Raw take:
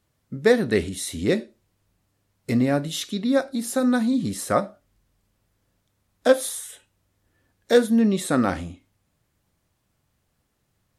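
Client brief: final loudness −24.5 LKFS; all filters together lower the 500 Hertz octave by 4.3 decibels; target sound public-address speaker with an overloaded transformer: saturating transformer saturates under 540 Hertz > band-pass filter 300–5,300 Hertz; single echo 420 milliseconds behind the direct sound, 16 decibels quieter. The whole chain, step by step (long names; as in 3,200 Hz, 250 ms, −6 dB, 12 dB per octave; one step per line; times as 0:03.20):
parametric band 500 Hz −4 dB
single-tap delay 420 ms −16 dB
saturating transformer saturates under 540 Hz
band-pass filter 300–5,300 Hz
level +4 dB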